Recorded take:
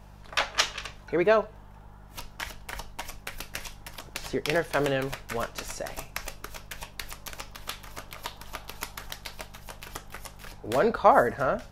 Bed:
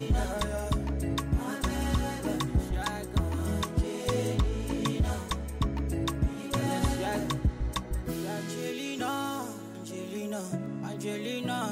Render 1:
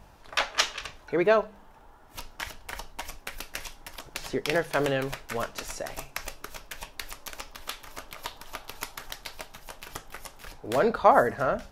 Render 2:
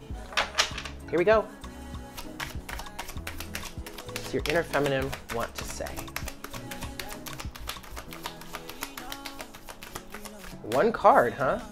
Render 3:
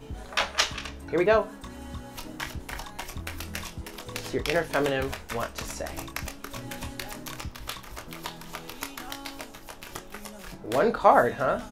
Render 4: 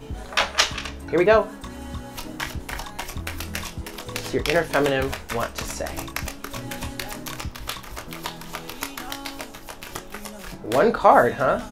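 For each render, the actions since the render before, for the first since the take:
hum removal 50 Hz, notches 4
mix in bed −12 dB
double-tracking delay 25 ms −8 dB
level +5 dB; brickwall limiter −2 dBFS, peak gain reduction 2.5 dB

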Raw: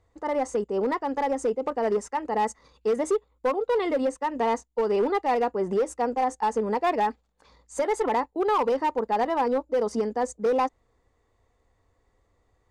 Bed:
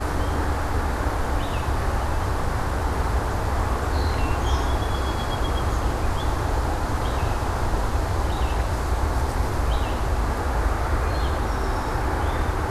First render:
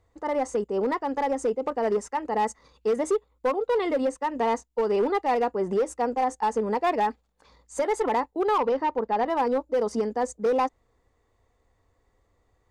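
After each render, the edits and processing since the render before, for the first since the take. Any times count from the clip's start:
0:08.58–0:09.28: high-frequency loss of the air 110 metres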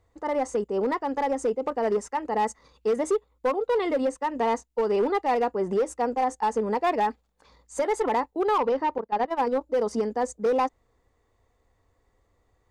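0:08.98–0:09.61: noise gate −26 dBFS, range −17 dB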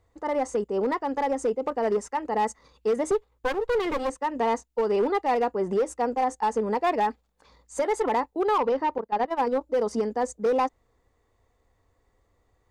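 0:03.11–0:04.10: lower of the sound and its delayed copy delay 2.4 ms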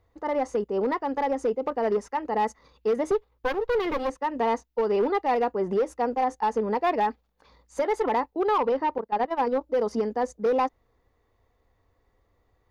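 parametric band 8,100 Hz −13.5 dB 0.52 octaves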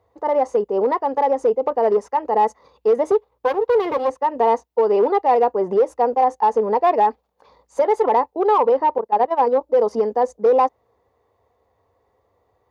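high-pass filter 67 Hz 24 dB per octave
flat-topped bell 660 Hz +8.5 dB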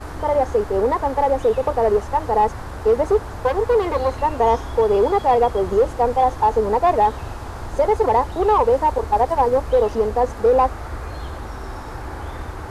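mix in bed −7 dB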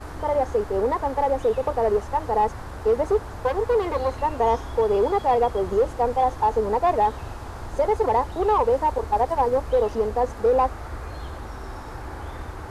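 level −4 dB

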